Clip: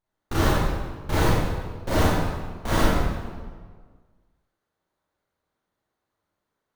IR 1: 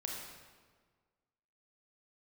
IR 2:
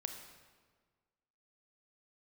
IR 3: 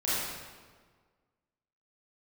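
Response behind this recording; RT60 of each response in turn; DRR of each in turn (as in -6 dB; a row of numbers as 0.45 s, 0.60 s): 3; 1.6 s, 1.6 s, 1.6 s; -1.5 dB, 5.0 dB, -11.0 dB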